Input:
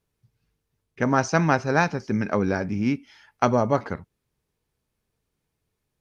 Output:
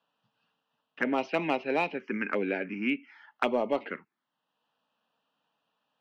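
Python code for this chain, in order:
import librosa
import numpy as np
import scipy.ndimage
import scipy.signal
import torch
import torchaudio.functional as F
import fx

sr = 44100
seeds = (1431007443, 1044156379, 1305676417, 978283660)

p1 = scipy.signal.sosfilt(scipy.signal.butter(4, 260.0, 'highpass', fs=sr, output='sos'), x)
p2 = fx.env_phaser(p1, sr, low_hz=380.0, high_hz=1600.0, full_db=-18.5)
p3 = fx.ladder_lowpass(p2, sr, hz=3100.0, resonance_pct=65)
p4 = np.clip(10.0 ** (27.0 / 20.0) * p3, -1.0, 1.0) / 10.0 ** (27.0 / 20.0)
p5 = p3 + F.gain(torch.from_numpy(p4), -5.0).numpy()
p6 = fx.band_squash(p5, sr, depth_pct=40)
y = F.gain(torch.from_numpy(p6), 4.0).numpy()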